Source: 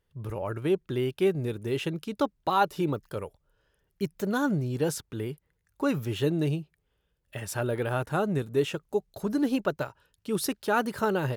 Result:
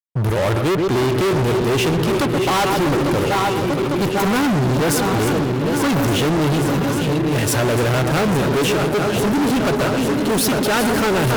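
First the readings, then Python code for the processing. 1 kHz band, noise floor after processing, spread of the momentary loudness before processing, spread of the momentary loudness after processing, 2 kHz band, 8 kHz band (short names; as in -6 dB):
+11.5 dB, -20 dBFS, 10 LU, 2 LU, +13.5 dB, +16.0 dB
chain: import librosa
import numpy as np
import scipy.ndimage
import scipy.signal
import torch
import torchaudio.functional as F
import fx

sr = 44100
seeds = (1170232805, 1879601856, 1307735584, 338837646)

y = fx.reverse_delay_fb(x, sr, ms=425, feedback_pct=82, wet_db=-11)
y = fx.echo_filtered(y, sr, ms=127, feedback_pct=58, hz=1200.0, wet_db=-10.5)
y = fx.fuzz(y, sr, gain_db=39.0, gate_db=-47.0)
y = F.gain(torch.from_numpy(y), -2.5).numpy()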